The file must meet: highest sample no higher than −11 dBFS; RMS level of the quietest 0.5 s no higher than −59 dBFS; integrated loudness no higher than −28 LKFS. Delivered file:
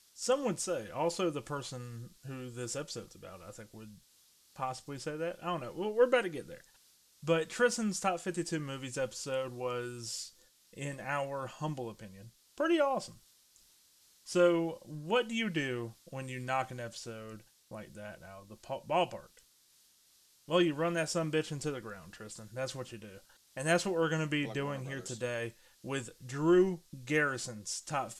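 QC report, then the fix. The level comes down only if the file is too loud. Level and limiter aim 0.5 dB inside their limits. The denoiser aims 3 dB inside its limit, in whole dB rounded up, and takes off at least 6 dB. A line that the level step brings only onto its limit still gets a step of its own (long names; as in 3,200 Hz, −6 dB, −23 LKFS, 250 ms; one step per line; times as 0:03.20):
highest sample −14.5 dBFS: in spec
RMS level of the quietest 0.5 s −66 dBFS: in spec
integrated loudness −34.0 LKFS: in spec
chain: no processing needed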